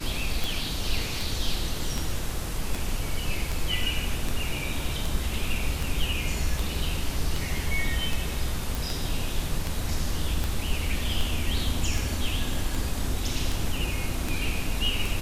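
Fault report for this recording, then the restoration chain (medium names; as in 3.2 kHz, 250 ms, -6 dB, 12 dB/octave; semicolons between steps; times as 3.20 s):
tick 78 rpm
8.75 s: pop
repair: de-click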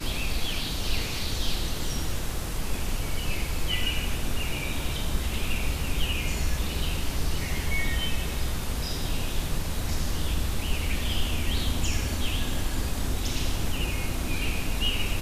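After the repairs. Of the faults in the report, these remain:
nothing left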